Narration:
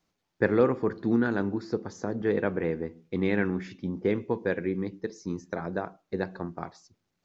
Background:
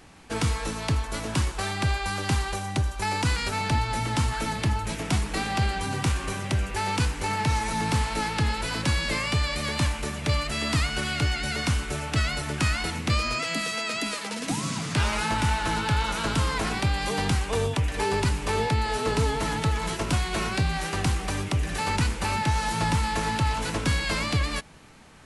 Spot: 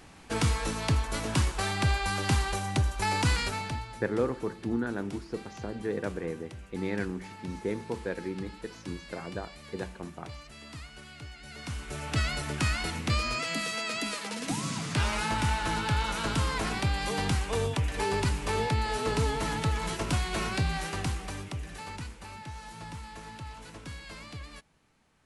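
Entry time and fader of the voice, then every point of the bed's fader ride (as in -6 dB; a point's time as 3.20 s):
3.60 s, -6.0 dB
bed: 3.40 s -1 dB
4.07 s -19.5 dB
11.37 s -19.5 dB
12.12 s -3.5 dB
20.74 s -3.5 dB
22.26 s -17.5 dB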